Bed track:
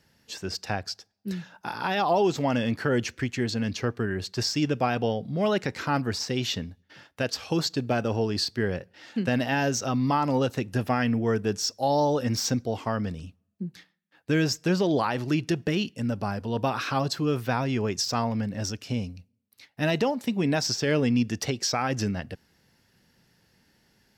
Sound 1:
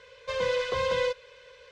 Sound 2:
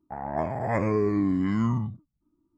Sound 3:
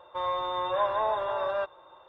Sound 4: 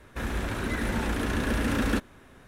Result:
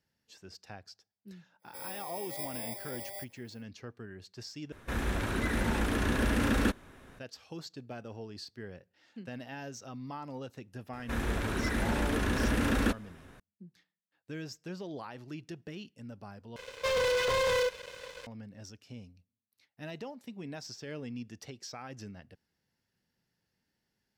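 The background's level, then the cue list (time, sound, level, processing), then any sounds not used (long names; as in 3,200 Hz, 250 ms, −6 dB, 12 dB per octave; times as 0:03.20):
bed track −17.5 dB
0:01.59: mix in 3 −13.5 dB, fades 0.10 s + samples in bit-reversed order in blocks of 32 samples
0:04.72: overwrite with 4 −1.5 dB
0:10.93: mix in 4 −2 dB
0:16.56: overwrite with 1 −10 dB + leveller curve on the samples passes 5
not used: 2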